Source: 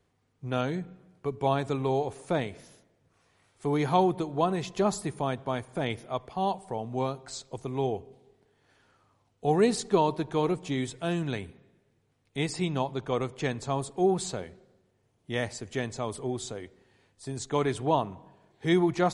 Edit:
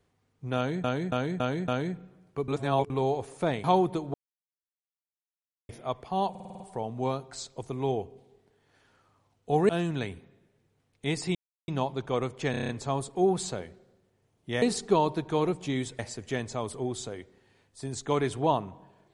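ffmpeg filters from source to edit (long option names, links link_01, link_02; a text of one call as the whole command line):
ffmpeg -i in.wav -filter_complex "[0:a]asplit=26[link_01][link_02][link_03][link_04][link_05][link_06][link_07][link_08][link_09][link_10][link_11][link_12][link_13][link_14][link_15][link_16][link_17][link_18][link_19][link_20][link_21][link_22][link_23][link_24][link_25][link_26];[link_01]atrim=end=0.842[link_27];[link_02]atrim=start=0.558:end=0.842[link_28];[link_03]atrim=start=0.558:end=0.842[link_29];[link_04]atrim=start=0.558:end=0.842[link_30];[link_05]atrim=start=0.558:end=1.362[link_31];[link_06]atrim=start=1.358:end=1.782,asetpts=PTS-STARTPTS,areverse[link_32];[link_07]atrim=start=1.778:end=2.522[link_33];[link_08]atrim=start=3.888:end=4.39,asetpts=PTS-STARTPTS,afade=type=out:start_time=0.498:duration=0.004:curve=hsin[link_34];[link_09]atrim=start=4.39:end=5.94,asetpts=PTS-STARTPTS,volume=0[link_35];[link_10]atrim=start=5.94:end=6.602,asetpts=PTS-STARTPTS,afade=type=in:duration=0.004:curve=hsin[link_36];[link_11]atrim=start=6.548:end=6.602[link_37];[link_12]atrim=start=6.548:end=6.602[link_38];[link_13]atrim=start=6.548:end=6.602[link_39];[link_14]atrim=start=6.548:end=6.602[link_40];[link_15]atrim=start=6.548:end=6.602[link_41];[link_16]atrim=start=6.548:end=9.642[link_42];[link_17]atrim=start=11.008:end=12.67,asetpts=PTS-STARTPTS,afade=type=out:start_time=1.658:duration=0.004:curve=hsin,apad=pad_dur=0.33[link_43];[link_18]atrim=start=12.67:end=13.532,asetpts=PTS-STARTPTS,afade=type=in:duration=0.004:curve=hsin[link_44];[link_19]atrim=start=13.498:end=13.532[link_45];[link_20]atrim=start=13.498:end=13.532[link_46];[link_21]atrim=start=13.498:end=13.532[link_47];[link_22]atrim=start=13.498:end=13.532[link_48];[link_23]atrim=start=13.498:end=13.532[link_49];[link_24]atrim=start=13.498:end=15.432[link_50];[link_25]atrim=start=9.638:end=11.012[link_51];[link_26]atrim=start=15.428[link_52];[link_27][link_28]acrossfade=duration=0.004:curve1=hsin:curve2=hsin[link_53];[link_53][link_29]acrossfade=duration=0.004:curve1=hsin:curve2=hsin[link_54];[link_54][link_30]acrossfade=duration=0.004:curve1=hsin:curve2=hsin[link_55];[link_55][link_31]acrossfade=duration=0.004:curve1=hsin:curve2=hsin[link_56];[link_56][link_32]acrossfade=duration=0.004:curve1=hsin:curve2=hsin[link_57];[link_57][link_33]acrossfade=duration=0.004:curve1=hsin:curve2=hsin[link_58];[link_34][link_35][link_36]concat=n=3:v=0:a=1[link_59];[link_58][link_59]acrossfade=duration=0.004:curve1=hsin:curve2=hsin[link_60];[link_60][link_37]acrossfade=duration=0.004:curve1=hsin:curve2=hsin[link_61];[link_61][link_38]acrossfade=duration=0.004:curve1=hsin:curve2=hsin[link_62];[link_62][link_39]acrossfade=duration=0.004:curve1=hsin:curve2=hsin[link_63];[link_63][link_40]acrossfade=duration=0.004:curve1=hsin:curve2=hsin[link_64];[link_64][link_41]acrossfade=duration=0.004:curve1=hsin:curve2=hsin[link_65];[link_65][link_42]acrossfade=duration=0.004:curve1=hsin:curve2=hsin[link_66];[link_43][link_44]concat=n=2:v=0:a=1[link_67];[link_66][link_67]acrossfade=duration=0.004:curve1=hsin:curve2=hsin[link_68];[link_68][link_45]acrossfade=duration=0.004:curve1=hsin:curve2=hsin[link_69];[link_69][link_46]acrossfade=duration=0.004:curve1=hsin:curve2=hsin[link_70];[link_70][link_47]acrossfade=duration=0.004:curve1=hsin:curve2=hsin[link_71];[link_71][link_48]acrossfade=duration=0.004:curve1=hsin:curve2=hsin[link_72];[link_72][link_49]acrossfade=duration=0.004:curve1=hsin:curve2=hsin[link_73];[link_73][link_50]acrossfade=duration=0.004:curve1=hsin:curve2=hsin[link_74];[link_74][link_51]acrossfade=duration=0.004:curve1=hsin:curve2=hsin[link_75];[link_75][link_52]acrossfade=duration=0.004:curve1=hsin:curve2=hsin" out.wav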